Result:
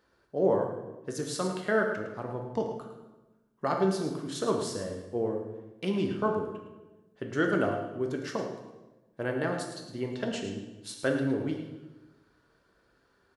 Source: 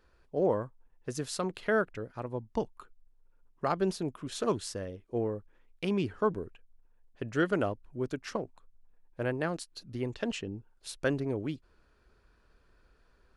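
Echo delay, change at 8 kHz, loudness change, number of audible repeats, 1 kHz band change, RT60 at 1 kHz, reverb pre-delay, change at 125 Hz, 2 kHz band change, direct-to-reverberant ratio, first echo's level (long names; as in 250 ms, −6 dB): 108 ms, +2.0 dB, +2.0 dB, 1, +2.5 dB, 1.0 s, 6 ms, +1.0 dB, +2.5 dB, 1.5 dB, −10.0 dB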